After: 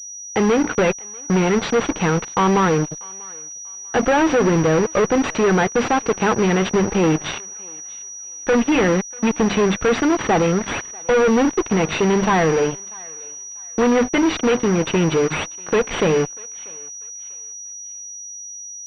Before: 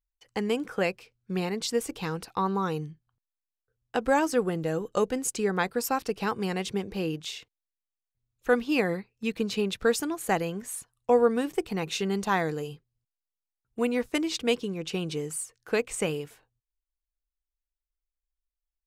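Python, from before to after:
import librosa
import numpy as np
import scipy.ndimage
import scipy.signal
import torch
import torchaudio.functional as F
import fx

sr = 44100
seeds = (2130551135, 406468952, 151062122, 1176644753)

y = fx.block_float(x, sr, bits=5)
y = fx.hum_notches(y, sr, base_hz=50, count=6)
y = fx.fuzz(y, sr, gain_db=36.0, gate_db=-41.0)
y = fx.echo_thinned(y, sr, ms=641, feedback_pct=33, hz=710.0, wet_db=-22)
y = fx.pwm(y, sr, carrier_hz=5800.0)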